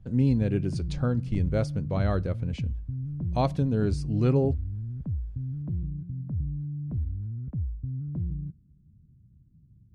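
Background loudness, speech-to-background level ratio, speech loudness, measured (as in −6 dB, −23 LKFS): −33.5 LKFS, 5.5 dB, −28.0 LKFS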